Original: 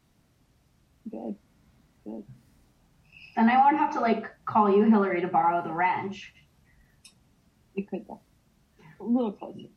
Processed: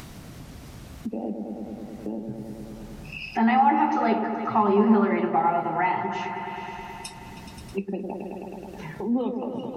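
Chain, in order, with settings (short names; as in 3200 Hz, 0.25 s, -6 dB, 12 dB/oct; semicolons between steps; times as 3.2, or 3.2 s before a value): repeats that get brighter 0.106 s, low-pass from 750 Hz, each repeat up 1 oct, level -6 dB; upward compressor, threshold -23 dBFS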